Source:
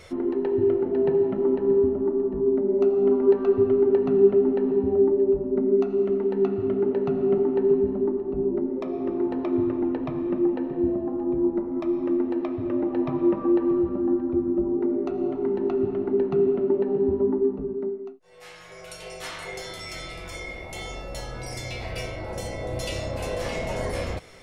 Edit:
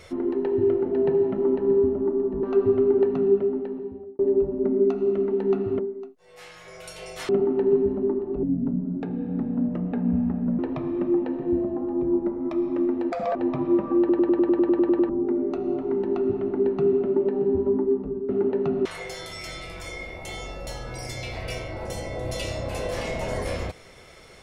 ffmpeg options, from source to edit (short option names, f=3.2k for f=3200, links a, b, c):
-filter_complex "[0:a]asplit=22[a][b][c][d][e][f][g][h][i][j][k][l][m][n][o][p][q][r][s][t][u][v];[a]atrim=end=2.432[w];[b]atrim=start=3.348:end=5.11,asetpts=PTS-STARTPTS,afade=t=out:st=0.542:d=1.22[x];[c]atrim=start=5.11:end=6.712,asetpts=PTS-STARTPTS,afade=t=in:d=0.004:c=hsin[y];[d]atrim=start=17.828:end=19.332[z];[e]atrim=start=7.268:end=8.414[aa];[f]atrim=start=8.41:end=9.9,asetpts=PTS-STARTPTS,asetrate=30429,aresample=44100,atrim=end_sample=95230,asetpts=PTS-STARTPTS[ab];[g]atrim=start=9.896:end=12.434[ac];[h]atrim=start=12.43:end=12.89,asetpts=PTS-STARTPTS,asetrate=86877,aresample=44100,atrim=end_sample=10297,asetpts=PTS-STARTPTS[ad];[i]atrim=start=12.886:end=13.632[ae];[j]atrim=start=13.528:end=13.632[af];[k]atrim=start=13.528:end=13.632[ag];[l]atrim=start=13.528:end=13.632[ah];[m]atrim=start=13.528:end=13.632[ai];[n]atrim=start=13.528:end=13.632[aj];[o]atrim=start=13.528:end=13.632[ak];[p]atrim=start=13.528:end=13.632[al];[q]atrim=start=13.528:end=13.632[am];[r]atrim=start=13.528:end=13.632[an];[s]atrim=start=13.528:end=13.632[ao];[t]atrim=start=14.628:end=17.832[ap];[u]atrim=start=6.708:end=7.272[aq];[v]atrim=start=19.328[ar];[x][y]concat=n=2:v=0:a=1[as];[w][as]acrossfade=d=0.004:c1=hsin:c2=hsin[at];[at][z]acrossfade=d=0.004:c1=hsin:c2=hsin[au];[au][aa]acrossfade=d=0.004:c1=hsin:c2=hsin[av];[av][ab]acrossfade=d=0.004:c1=hsin:c2=hsin[aw];[aw][ac]acrossfade=d=0.004:c1=hsin:c2=hsin[ax];[ax][ad]acrossfade=d=0.004:c1=hsin:c2=hsin[ay];[ay][ae]acrossfade=d=0.004:c1=hsin:c2=hsin[az];[az][af]acrossfade=d=0.004:c1=hsin:c2=hsin[ba];[ba][ag]acrossfade=d=0.004:c1=hsin:c2=hsin[bb];[bb][ah]acrossfade=d=0.004:c1=hsin:c2=hsin[bc];[bc][ai]acrossfade=d=0.004:c1=hsin:c2=hsin[bd];[bd][aj]acrossfade=d=0.004:c1=hsin:c2=hsin[be];[be][ak]acrossfade=d=0.004:c1=hsin:c2=hsin[bf];[bf][al]acrossfade=d=0.004:c1=hsin:c2=hsin[bg];[bg][am]acrossfade=d=0.004:c1=hsin:c2=hsin[bh];[bh][an]acrossfade=d=0.004:c1=hsin:c2=hsin[bi];[bi][ao]acrossfade=d=0.004:c1=hsin:c2=hsin[bj];[bj][ap]acrossfade=d=0.004:c1=hsin:c2=hsin[bk];[bk][aq]acrossfade=d=0.004:c1=hsin:c2=hsin[bl];[bl][ar]acrossfade=d=0.004:c1=hsin:c2=hsin"